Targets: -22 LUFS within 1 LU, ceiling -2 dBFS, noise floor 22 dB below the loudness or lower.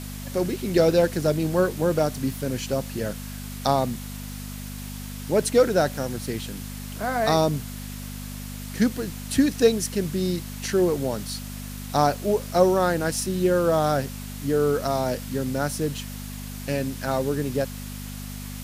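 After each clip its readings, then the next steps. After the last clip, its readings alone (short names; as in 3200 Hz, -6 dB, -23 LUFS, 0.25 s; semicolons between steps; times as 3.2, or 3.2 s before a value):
hum 50 Hz; harmonics up to 250 Hz; hum level -33 dBFS; noise floor -35 dBFS; noise floor target -47 dBFS; loudness -24.5 LUFS; peak -5.5 dBFS; loudness target -22.0 LUFS
-> de-hum 50 Hz, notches 5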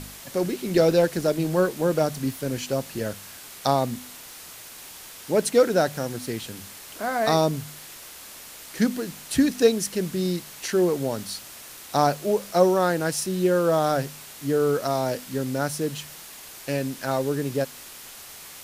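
hum none; noise floor -43 dBFS; noise floor target -47 dBFS
-> denoiser 6 dB, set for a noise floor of -43 dBFS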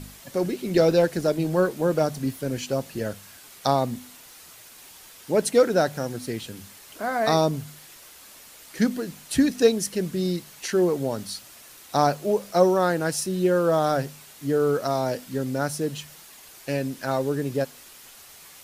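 noise floor -48 dBFS; loudness -24.5 LUFS; peak -5.5 dBFS; loudness target -22.0 LUFS
-> gain +2.5 dB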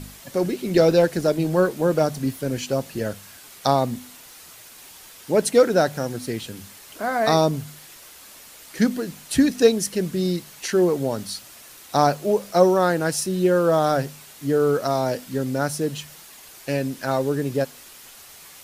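loudness -22.0 LUFS; peak -3.0 dBFS; noise floor -45 dBFS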